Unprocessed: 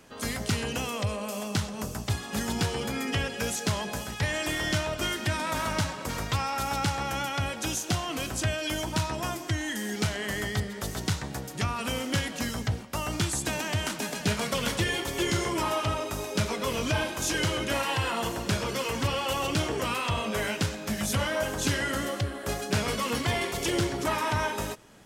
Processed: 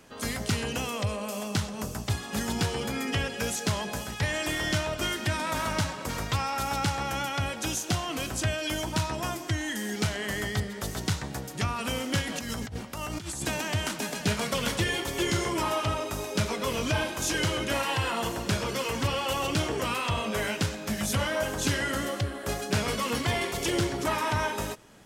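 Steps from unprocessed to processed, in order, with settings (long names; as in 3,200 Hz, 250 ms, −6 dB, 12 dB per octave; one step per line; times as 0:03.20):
0:12.22–0:13.45: compressor whose output falls as the input rises −35 dBFS, ratio −1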